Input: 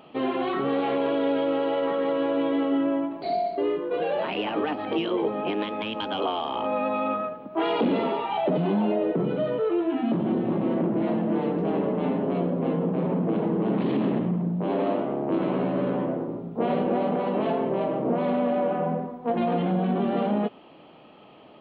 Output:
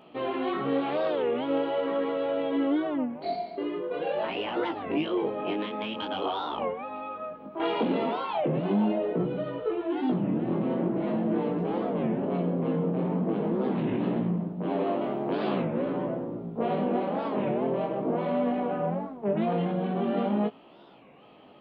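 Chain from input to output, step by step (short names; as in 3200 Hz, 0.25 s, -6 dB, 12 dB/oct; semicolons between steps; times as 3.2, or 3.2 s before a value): 6.72–7.6 compressor 4:1, threshold -31 dBFS, peak gain reduction 8 dB; 9.24–9.66 notch comb 220 Hz; 15.01–15.65 high shelf 2200 Hz +11 dB; chorus 0.43 Hz, delay 16.5 ms, depth 7.1 ms; record warp 33 1/3 rpm, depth 250 cents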